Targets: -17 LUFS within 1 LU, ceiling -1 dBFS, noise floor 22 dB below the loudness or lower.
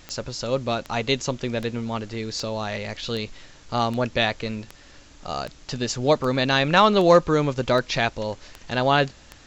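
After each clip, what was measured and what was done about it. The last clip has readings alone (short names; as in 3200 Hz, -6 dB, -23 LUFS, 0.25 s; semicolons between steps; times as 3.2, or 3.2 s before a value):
clicks 13; loudness -23.5 LUFS; peak -5.0 dBFS; loudness target -17.0 LUFS
-> de-click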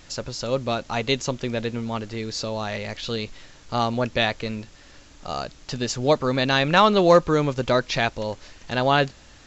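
clicks 0; loudness -23.5 LUFS; peak -5.0 dBFS; loudness target -17.0 LUFS
-> gain +6.5 dB; limiter -1 dBFS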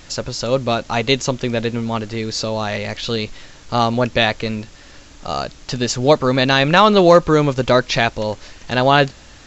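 loudness -17.5 LUFS; peak -1.0 dBFS; noise floor -43 dBFS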